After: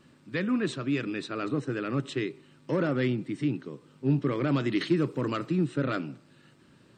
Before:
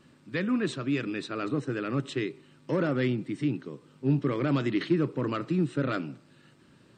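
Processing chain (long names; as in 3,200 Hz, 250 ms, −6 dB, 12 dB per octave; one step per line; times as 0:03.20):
0:04.70–0:05.46: high-shelf EQ 4,600 Hz → 6,400 Hz +11 dB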